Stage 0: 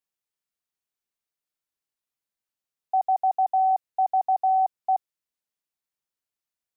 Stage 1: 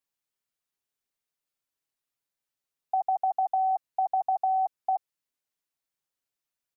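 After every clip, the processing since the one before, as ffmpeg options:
ffmpeg -i in.wav -af "aecho=1:1:7.3:0.41" out.wav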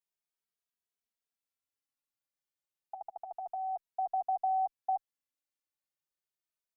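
ffmpeg -i in.wav -filter_complex "[0:a]asplit=2[link_01][link_02];[link_02]adelay=2.8,afreqshift=0.31[link_03];[link_01][link_03]amix=inputs=2:normalize=1,volume=-4.5dB" out.wav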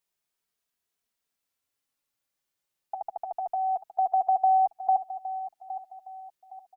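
ffmpeg -i in.wav -af "aecho=1:1:814|1628|2442:0.224|0.0761|0.0259,volume=8.5dB" out.wav

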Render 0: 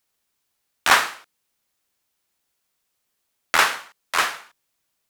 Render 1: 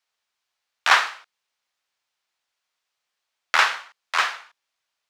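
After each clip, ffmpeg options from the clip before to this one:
ffmpeg -i in.wav -filter_complex "[0:a]acrossover=split=580 6300:gain=0.178 1 0.141[link_01][link_02][link_03];[link_01][link_02][link_03]amix=inputs=3:normalize=0" out.wav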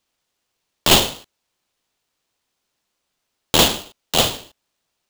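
ffmpeg -i in.wav -af "asoftclip=type=hard:threshold=-11dB,aeval=exprs='val(0)*sgn(sin(2*PI*1800*n/s))':channel_layout=same,volume=5dB" out.wav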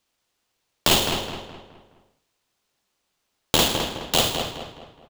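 ffmpeg -i in.wav -filter_complex "[0:a]acompressor=threshold=-15dB:ratio=6,asplit=2[link_01][link_02];[link_02]adelay=210,lowpass=frequency=3000:poles=1,volume=-5.5dB,asplit=2[link_03][link_04];[link_04]adelay=210,lowpass=frequency=3000:poles=1,volume=0.42,asplit=2[link_05][link_06];[link_06]adelay=210,lowpass=frequency=3000:poles=1,volume=0.42,asplit=2[link_07][link_08];[link_08]adelay=210,lowpass=frequency=3000:poles=1,volume=0.42,asplit=2[link_09][link_10];[link_10]adelay=210,lowpass=frequency=3000:poles=1,volume=0.42[link_11];[link_03][link_05][link_07][link_09][link_11]amix=inputs=5:normalize=0[link_12];[link_01][link_12]amix=inputs=2:normalize=0" out.wav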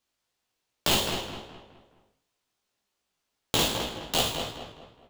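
ffmpeg -i in.wav -af "flanger=delay=16:depth=3.6:speed=2.6,volume=-2.5dB" out.wav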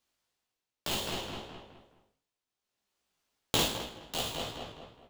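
ffmpeg -i in.wav -af "tremolo=f=0.62:d=0.71" out.wav

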